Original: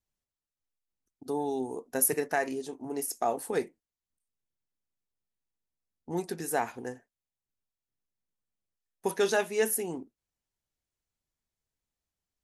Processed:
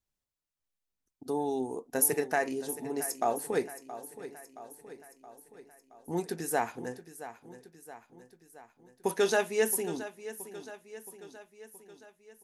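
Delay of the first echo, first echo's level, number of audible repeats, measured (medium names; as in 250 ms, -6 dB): 672 ms, -14.0 dB, 5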